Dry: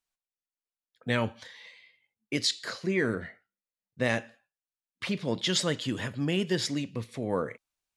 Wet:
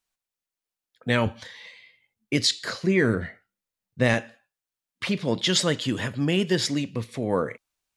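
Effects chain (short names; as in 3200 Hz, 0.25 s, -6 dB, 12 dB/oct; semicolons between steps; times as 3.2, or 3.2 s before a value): 1.26–4.14 low shelf 130 Hz +9 dB; gain +5 dB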